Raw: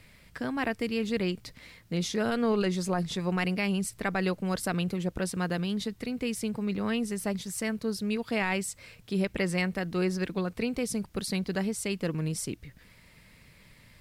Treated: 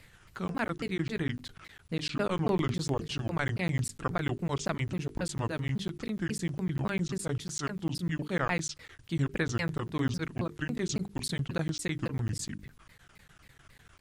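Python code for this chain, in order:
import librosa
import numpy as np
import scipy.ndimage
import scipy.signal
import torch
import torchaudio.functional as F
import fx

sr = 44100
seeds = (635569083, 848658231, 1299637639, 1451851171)

y = fx.pitch_ramps(x, sr, semitones=-8.5, every_ms=274)
y = fx.hum_notches(y, sr, base_hz=50, count=9)
y = fx.buffer_crackle(y, sr, first_s=0.48, period_s=0.1, block=512, kind='zero')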